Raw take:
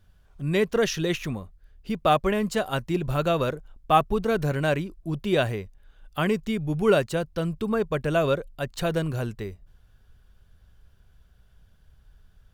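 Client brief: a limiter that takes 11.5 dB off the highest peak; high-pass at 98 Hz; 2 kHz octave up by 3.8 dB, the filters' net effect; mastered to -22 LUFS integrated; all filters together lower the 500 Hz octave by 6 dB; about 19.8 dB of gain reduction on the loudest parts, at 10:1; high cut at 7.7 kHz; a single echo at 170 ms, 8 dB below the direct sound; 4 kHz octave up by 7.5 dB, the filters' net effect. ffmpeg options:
-af "highpass=98,lowpass=7700,equalizer=f=500:t=o:g=-8,equalizer=f=2000:t=o:g=3.5,equalizer=f=4000:t=o:g=8.5,acompressor=threshold=0.0178:ratio=10,alimiter=level_in=2.37:limit=0.0631:level=0:latency=1,volume=0.422,aecho=1:1:170:0.398,volume=9.44"

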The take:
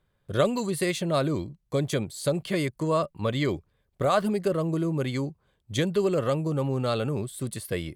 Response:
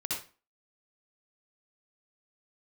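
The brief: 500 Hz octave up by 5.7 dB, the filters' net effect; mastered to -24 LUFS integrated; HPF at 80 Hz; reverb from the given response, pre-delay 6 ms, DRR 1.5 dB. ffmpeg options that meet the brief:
-filter_complex "[0:a]highpass=80,equalizer=f=500:t=o:g=7,asplit=2[s0][s1];[1:a]atrim=start_sample=2205,adelay=6[s2];[s1][s2]afir=irnorm=-1:irlink=0,volume=0.531[s3];[s0][s3]amix=inputs=2:normalize=0,volume=0.794"

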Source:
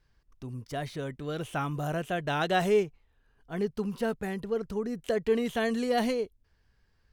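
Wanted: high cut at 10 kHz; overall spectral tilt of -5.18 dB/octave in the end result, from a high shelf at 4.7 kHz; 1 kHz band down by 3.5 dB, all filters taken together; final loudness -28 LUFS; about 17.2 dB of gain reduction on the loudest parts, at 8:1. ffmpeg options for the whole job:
-af "lowpass=10000,equalizer=f=1000:t=o:g=-6,highshelf=f=4700:g=3.5,acompressor=threshold=0.0112:ratio=8,volume=5.96"

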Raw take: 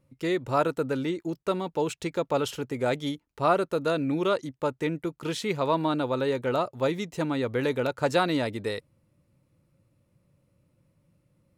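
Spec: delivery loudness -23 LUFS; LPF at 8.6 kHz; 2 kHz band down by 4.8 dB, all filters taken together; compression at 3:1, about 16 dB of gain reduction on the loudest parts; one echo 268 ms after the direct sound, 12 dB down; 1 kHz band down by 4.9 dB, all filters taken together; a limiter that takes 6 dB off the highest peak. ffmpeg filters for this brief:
-af "lowpass=8600,equalizer=f=1000:t=o:g=-5.5,equalizer=f=2000:t=o:g=-4.5,acompressor=threshold=0.00631:ratio=3,alimiter=level_in=3.55:limit=0.0631:level=0:latency=1,volume=0.282,aecho=1:1:268:0.251,volume=11.9"

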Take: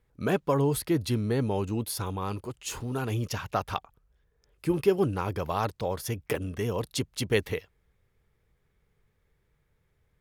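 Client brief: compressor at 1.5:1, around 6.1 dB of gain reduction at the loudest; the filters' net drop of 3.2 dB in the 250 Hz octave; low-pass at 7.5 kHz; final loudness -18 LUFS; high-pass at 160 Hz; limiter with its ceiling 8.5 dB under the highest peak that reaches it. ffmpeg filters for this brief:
-af "highpass=160,lowpass=7500,equalizer=f=250:t=o:g=-3.5,acompressor=threshold=0.0178:ratio=1.5,volume=8.91,alimiter=limit=0.562:level=0:latency=1"

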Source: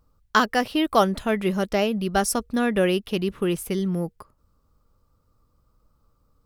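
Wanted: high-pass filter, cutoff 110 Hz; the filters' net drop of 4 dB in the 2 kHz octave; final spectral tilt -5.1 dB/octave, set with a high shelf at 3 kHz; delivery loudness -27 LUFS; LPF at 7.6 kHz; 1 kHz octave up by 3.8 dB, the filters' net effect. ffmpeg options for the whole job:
-af "highpass=110,lowpass=7600,equalizer=f=1000:t=o:g=7.5,equalizer=f=2000:t=o:g=-7.5,highshelf=f=3000:g=-6,volume=0.596"

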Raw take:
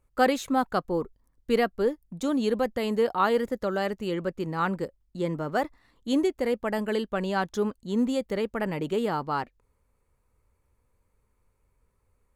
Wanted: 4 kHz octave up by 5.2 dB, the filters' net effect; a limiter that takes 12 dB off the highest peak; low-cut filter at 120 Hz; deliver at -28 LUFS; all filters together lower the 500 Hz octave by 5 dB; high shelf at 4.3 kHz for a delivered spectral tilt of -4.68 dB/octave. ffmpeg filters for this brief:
-af "highpass=120,equalizer=f=500:t=o:g=-6,equalizer=f=4000:t=o:g=4,highshelf=f=4300:g=5.5,volume=1.68,alimiter=limit=0.133:level=0:latency=1"

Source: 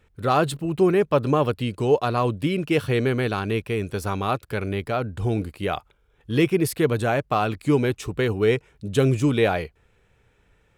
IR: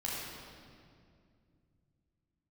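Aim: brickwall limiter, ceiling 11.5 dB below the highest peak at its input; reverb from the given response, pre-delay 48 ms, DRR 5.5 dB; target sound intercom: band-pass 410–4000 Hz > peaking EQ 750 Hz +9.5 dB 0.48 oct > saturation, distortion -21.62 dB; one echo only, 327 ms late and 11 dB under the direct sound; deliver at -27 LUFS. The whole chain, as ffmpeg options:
-filter_complex "[0:a]alimiter=limit=0.119:level=0:latency=1,aecho=1:1:327:0.282,asplit=2[s0][s1];[1:a]atrim=start_sample=2205,adelay=48[s2];[s1][s2]afir=irnorm=-1:irlink=0,volume=0.335[s3];[s0][s3]amix=inputs=2:normalize=0,highpass=410,lowpass=4000,equalizer=f=750:t=o:w=0.48:g=9.5,asoftclip=threshold=0.168,volume=1.26"

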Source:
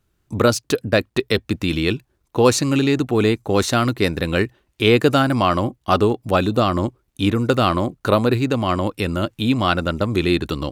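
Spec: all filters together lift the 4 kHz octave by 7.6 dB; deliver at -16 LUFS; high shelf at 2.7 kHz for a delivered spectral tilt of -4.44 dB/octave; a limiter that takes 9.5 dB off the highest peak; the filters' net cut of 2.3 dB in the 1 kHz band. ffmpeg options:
-af "equalizer=f=1000:t=o:g=-4.5,highshelf=f=2700:g=5,equalizer=f=4000:t=o:g=5.5,volume=1.58,alimiter=limit=0.75:level=0:latency=1"

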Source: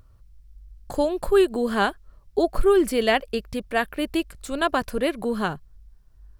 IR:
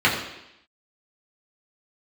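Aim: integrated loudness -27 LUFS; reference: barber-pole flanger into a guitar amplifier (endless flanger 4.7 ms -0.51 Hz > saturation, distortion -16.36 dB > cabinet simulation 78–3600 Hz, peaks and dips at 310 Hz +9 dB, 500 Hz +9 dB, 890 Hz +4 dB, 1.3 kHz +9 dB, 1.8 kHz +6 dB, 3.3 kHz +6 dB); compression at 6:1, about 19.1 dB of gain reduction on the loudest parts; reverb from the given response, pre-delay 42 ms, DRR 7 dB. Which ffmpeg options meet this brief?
-filter_complex "[0:a]acompressor=threshold=0.0178:ratio=6,asplit=2[s0][s1];[1:a]atrim=start_sample=2205,adelay=42[s2];[s1][s2]afir=irnorm=-1:irlink=0,volume=0.0447[s3];[s0][s3]amix=inputs=2:normalize=0,asplit=2[s4][s5];[s5]adelay=4.7,afreqshift=-0.51[s6];[s4][s6]amix=inputs=2:normalize=1,asoftclip=threshold=0.0224,highpass=78,equalizer=f=310:t=q:w=4:g=9,equalizer=f=500:t=q:w=4:g=9,equalizer=f=890:t=q:w=4:g=4,equalizer=f=1300:t=q:w=4:g=9,equalizer=f=1800:t=q:w=4:g=6,equalizer=f=3300:t=q:w=4:g=6,lowpass=f=3600:w=0.5412,lowpass=f=3600:w=1.3066,volume=3.35"

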